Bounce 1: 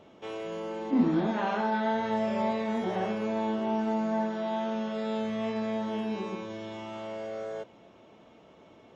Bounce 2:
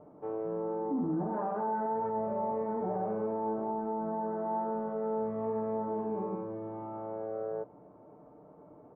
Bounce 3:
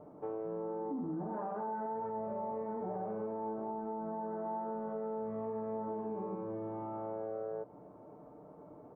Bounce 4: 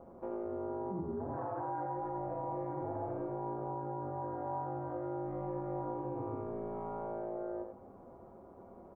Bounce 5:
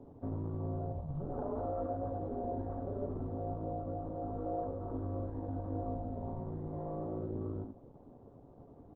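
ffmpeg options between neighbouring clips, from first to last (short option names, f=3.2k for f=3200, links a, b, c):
-af "lowpass=f=1.1k:w=0.5412,lowpass=f=1.1k:w=1.3066,aecho=1:1:6.7:0.51,alimiter=level_in=1.5dB:limit=-24dB:level=0:latency=1:release=43,volume=-1.5dB"
-af "acompressor=threshold=-37dB:ratio=5,volume=1dB"
-af "aeval=exprs='val(0)*sin(2*PI*84*n/s)':c=same,aecho=1:1:87:0.501,volume=2dB"
-af "highpass=f=43:w=0.5412,highpass=f=43:w=1.3066,highpass=f=260:t=q:w=0.5412,highpass=f=260:t=q:w=1.307,lowpass=f=2k:t=q:w=0.5176,lowpass=f=2k:t=q:w=0.7071,lowpass=f=2k:t=q:w=1.932,afreqshift=-260,volume=2.5dB" -ar 48000 -c:a libopus -b:a 8k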